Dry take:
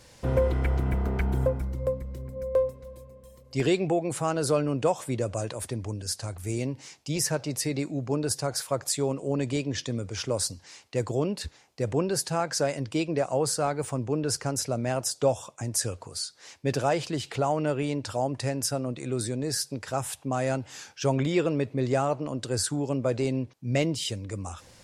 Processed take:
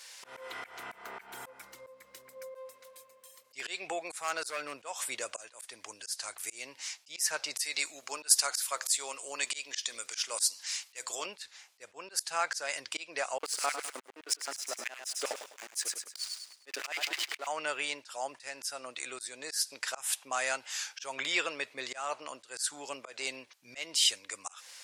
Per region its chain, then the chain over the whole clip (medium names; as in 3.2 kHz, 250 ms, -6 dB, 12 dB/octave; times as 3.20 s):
4.02–4.78 s: band-stop 3 kHz, Q 7.2 + overload inside the chain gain 19.5 dB
7.59–11.26 s: tilt EQ +2.5 dB/octave + de-hum 128.6 Hz, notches 10
13.38–17.47 s: LFO high-pass square 9.6 Hz 310–2200 Hz + hysteresis with a dead band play -31 dBFS + feedback delay 102 ms, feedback 35%, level -11 dB
whole clip: high-pass 1.5 kHz 12 dB/octave; slow attack 220 ms; trim +7 dB